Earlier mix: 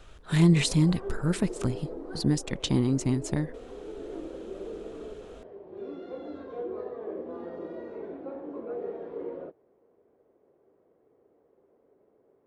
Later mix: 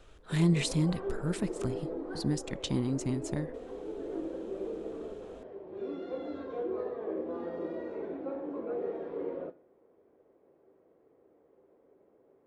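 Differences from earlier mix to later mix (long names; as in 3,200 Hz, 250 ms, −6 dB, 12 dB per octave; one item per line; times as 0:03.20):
speech −6.0 dB
reverb: on, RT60 0.50 s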